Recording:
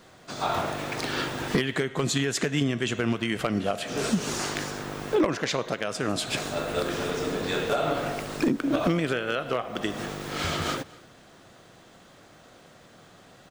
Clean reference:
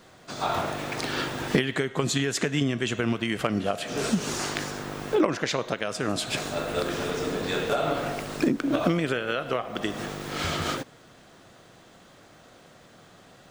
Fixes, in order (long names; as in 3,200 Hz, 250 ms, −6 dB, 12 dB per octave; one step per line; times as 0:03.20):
clipped peaks rebuilt −15.5 dBFS
echo removal 238 ms −23 dB